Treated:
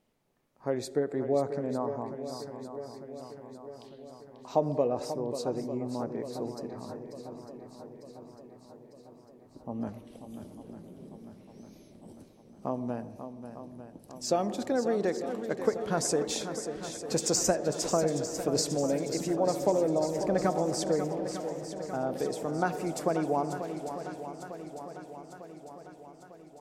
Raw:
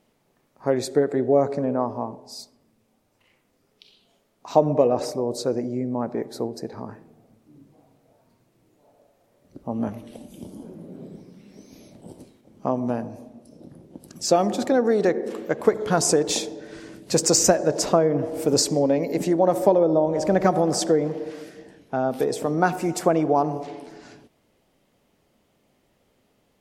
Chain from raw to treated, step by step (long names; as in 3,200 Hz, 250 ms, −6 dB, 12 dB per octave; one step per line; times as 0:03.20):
low-shelf EQ 67 Hz +5.5 dB
feedback echo with a long and a short gap by turns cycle 900 ms, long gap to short 1.5 to 1, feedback 57%, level −10 dB
level −9 dB